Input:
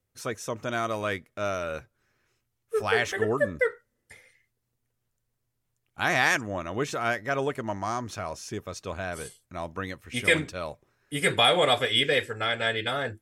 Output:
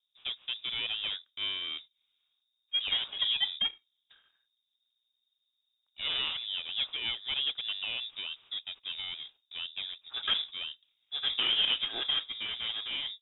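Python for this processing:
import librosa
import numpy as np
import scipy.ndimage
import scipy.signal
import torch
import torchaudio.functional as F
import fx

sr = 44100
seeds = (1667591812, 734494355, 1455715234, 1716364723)

y = scipy.ndimage.median_filter(x, 25, mode='constant')
y = fx.freq_invert(y, sr, carrier_hz=3700)
y = y * 10.0 ** (-3.5 / 20.0)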